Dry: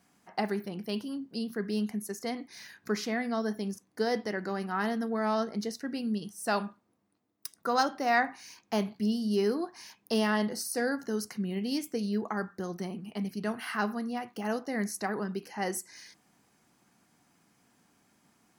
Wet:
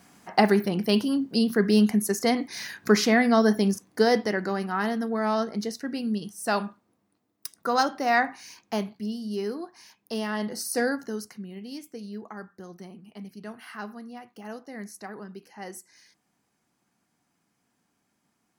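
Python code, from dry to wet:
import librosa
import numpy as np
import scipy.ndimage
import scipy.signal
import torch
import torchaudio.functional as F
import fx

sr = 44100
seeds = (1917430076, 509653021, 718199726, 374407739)

y = fx.gain(x, sr, db=fx.line((3.66, 11.5), (4.8, 3.5), (8.61, 3.5), (9.02, -3.0), (10.29, -3.0), (10.79, 5.5), (11.49, -7.0)))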